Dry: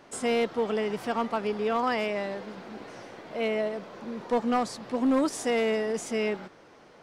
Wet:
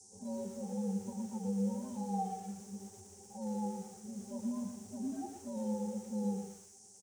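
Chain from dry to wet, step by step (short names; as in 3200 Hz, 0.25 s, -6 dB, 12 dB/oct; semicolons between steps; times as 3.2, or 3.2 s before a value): inharmonic rescaling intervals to 129%; Chebyshev band-stop 750–5300 Hz, order 2; bell 2700 Hz -8.5 dB 0.5 oct; octave resonator G, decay 0.14 s; band noise 5600–9800 Hz -58 dBFS; air absorption 54 m; echo 0.108 s -20 dB; lo-fi delay 0.116 s, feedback 35%, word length 10-bit, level -7 dB; gain +4 dB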